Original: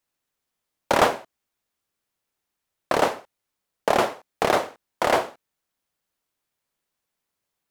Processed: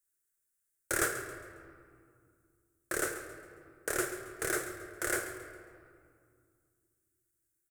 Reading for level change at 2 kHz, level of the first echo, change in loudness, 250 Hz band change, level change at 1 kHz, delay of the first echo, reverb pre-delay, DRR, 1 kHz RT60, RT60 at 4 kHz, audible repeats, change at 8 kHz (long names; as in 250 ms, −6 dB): −6.0 dB, −13.0 dB, −11.5 dB, −10.0 dB, −18.5 dB, 136 ms, 3 ms, 6.0 dB, 2.2 s, 1.2 s, 2, +2.0 dB